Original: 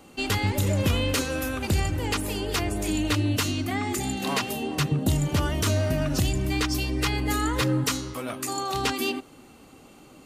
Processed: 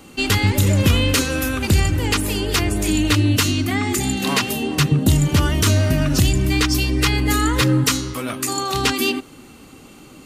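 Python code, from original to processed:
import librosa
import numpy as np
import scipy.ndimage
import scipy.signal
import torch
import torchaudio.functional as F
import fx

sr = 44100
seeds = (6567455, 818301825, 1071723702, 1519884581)

y = fx.peak_eq(x, sr, hz=680.0, db=-6.0, octaves=1.2)
y = F.gain(torch.from_numpy(y), 8.5).numpy()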